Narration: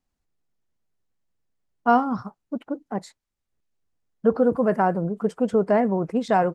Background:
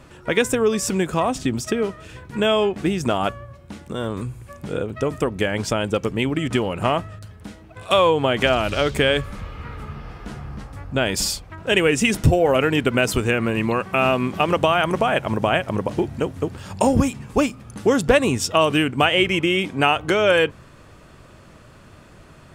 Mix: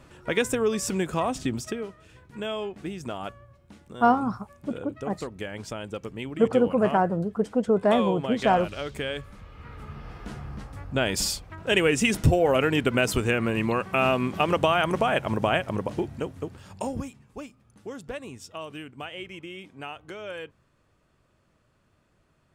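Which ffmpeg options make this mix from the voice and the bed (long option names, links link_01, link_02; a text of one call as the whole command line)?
ffmpeg -i stem1.wav -i stem2.wav -filter_complex "[0:a]adelay=2150,volume=-1.5dB[link_01];[1:a]volume=3.5dB,afade=type=out:start_time=1.53:duration=0.33:silence=0.421697,afade=type=in:start_time=9.46:duration=0.72:silence=0.354813,afade=type=out:start_time=15.47:duration=1.78:silence=0.149624[link_02];[link_01][link_02]amix=inputs=2:normalize=0" out.wav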